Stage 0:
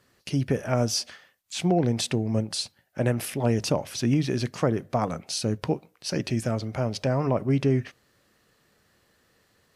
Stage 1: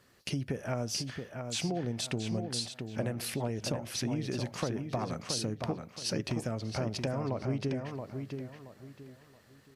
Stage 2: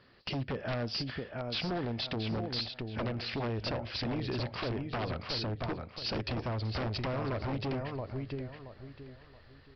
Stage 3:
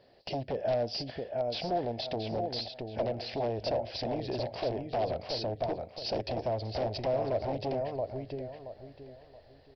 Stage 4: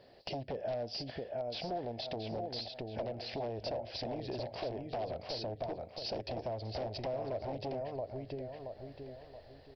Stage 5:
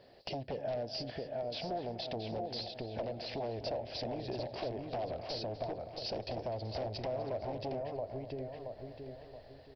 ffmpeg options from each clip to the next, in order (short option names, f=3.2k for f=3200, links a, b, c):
-filter_complex "[0:a]acompressor=threshold=-31dB:ratio=6,asplit=2[a][b];[b]adelay=675,lowpass=f=4.6k:p=1,volume=-6dB,asplit=2[c][d];[d]adelay=675,lowpass=f=4.6k:p=1,volume=0.3,asplit=2[e][f];[f]adelay=675,lowpass=f=4.6k:p=1,volume=0.3,asplit=2[g][h];[h]adelay=675,lowpass=f=4.6k:p=1,volume=0.3[i];[c][e][g][i]amix=inputs=4:normalize=0[j];[a][j]amix=inputs=2:normalize=0"
-af "asubboost=boost=11.5:cutoff=51,aresample=11025,aeval=exprs='0.0282*(abs(mod(val(0)/0.0282+3,4)-2)-1)':c=same,aresample=44100,volume=3dB"
-af "firequalizer=gain_entry='entry(220,0);entry(660,15);entry(1200,-9);entry(1700,-3);entry(5500,5)':delay=0.05:min_phase=1,volume=-4dB"
-af "acompressor=threshold=-44dB:ratio=2,volume=2dB"
-filter_complex "[0:a]asplit=2[a][b];[b]adelay=250,lowpass=f=2.4k:p=1,volume=-12dB,asplit=2[c][d];[d]adelay=250,lowpass=f=2.4k:p=1,volume=0.48,asplit=2[e][f];[f]adelay=250,lowpass=f=2.4k:p=1,volume=0.48,asplit=2[g][h];[h]adelay=250,lowpass=f=2.4k:p=1,volume=0.48,asplit=2[i][j];[j]adelay=250,lowpass=f=2.4k:p=1,volume=0.48[k];[a][c][e][g][i][k]amix=inputs=6:normalize=0"